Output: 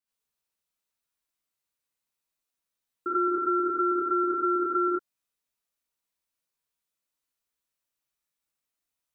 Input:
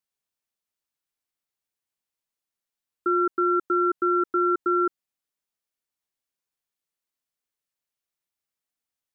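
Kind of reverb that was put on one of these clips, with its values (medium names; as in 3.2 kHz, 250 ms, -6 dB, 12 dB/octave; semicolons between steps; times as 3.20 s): gated-style reverb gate 120 ms rising, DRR -7.5 dB; trim -6.5 dB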